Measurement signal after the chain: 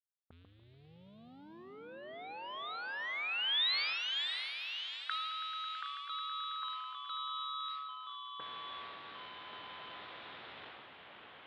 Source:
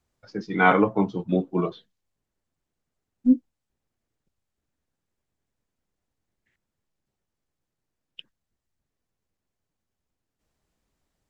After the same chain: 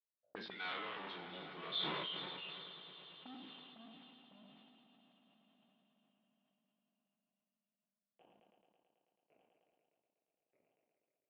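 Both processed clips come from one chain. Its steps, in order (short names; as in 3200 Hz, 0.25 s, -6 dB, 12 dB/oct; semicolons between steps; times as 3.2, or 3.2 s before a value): spectral trails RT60 0.33 s; HPF 68 Hz 24 dB/oct; gate with hold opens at -36 dBFS; low-pass opened by the level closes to 640 Hz, open at -22.5 dBFS; high shelf 3400 Hz +5 dB; reverse; compressor 4:1, threshold -33 dBFS; reverse; sample leveller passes 3; auto-wah 620–3700 Hz, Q 4.9, up, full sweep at -33.5 dBFS; air absorption 450 m; on a send: swelling echo 0.109 s, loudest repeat 5, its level -17.5 dB; on the sum: echoes that change speed 0.105 s, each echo -2 st, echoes 2, each echo -6 dB; sustainer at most 21 dB/s; gain +7.5 dB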